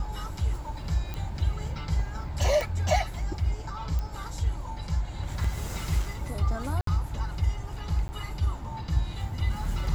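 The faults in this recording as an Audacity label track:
1.140000	1.140000	pop -20 dBFS
2.610000	2.610000	pop
3.990000	3.990000	pop -20 dBFS
5.440000	5.440000	dropout 4.5 ms
6.810000	6.870000	dropout 63 ms
8.080000	8.090000	dropout 10 ms

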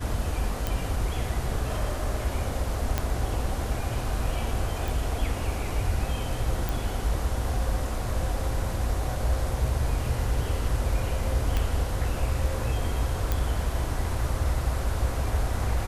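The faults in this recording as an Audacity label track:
0.670000	0.670000	pop
2.980000	2.980000	pop -10 dBFS
4.880000	4.880000	pop
6.690000	6.690000	pop
11.570000	11.570000	pop -13 dBFS
13.320000	13.320000	pop

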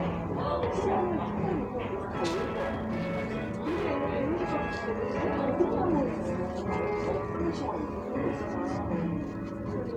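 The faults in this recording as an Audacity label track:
2.270000	3.860000	clipped -27.5 dBFS

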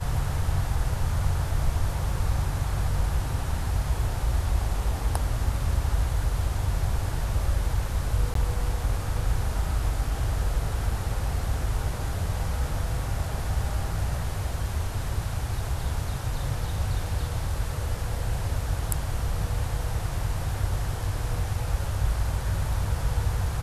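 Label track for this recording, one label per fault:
8.340000	8.350000	dropout 13 ms

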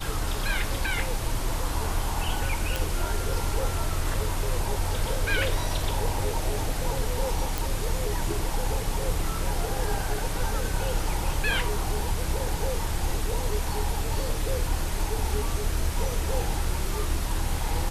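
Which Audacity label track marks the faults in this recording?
2.760000	2.760000	pop
7.580000	7.580000	pop

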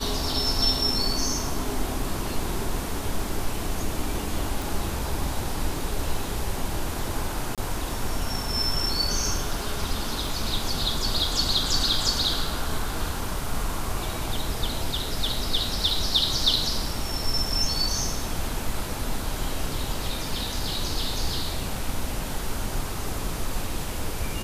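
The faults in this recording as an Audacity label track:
4.620000	4.620000	pop
7.550000	7.580000	dropout 27 ms
10.270000	10.270000	dropout 2 ms

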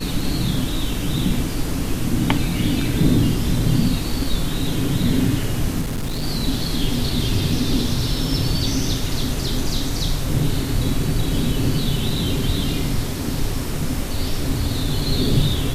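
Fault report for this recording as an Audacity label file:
5.810000	6.240000	clipped -20.5 dBFS

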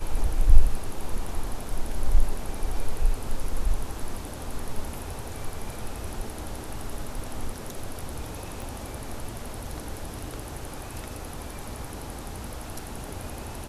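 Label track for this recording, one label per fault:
8.620000	8.620000	pop

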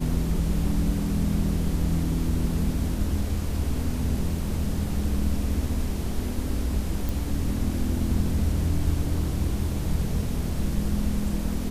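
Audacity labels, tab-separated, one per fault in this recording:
7.090000	7.090000	pop

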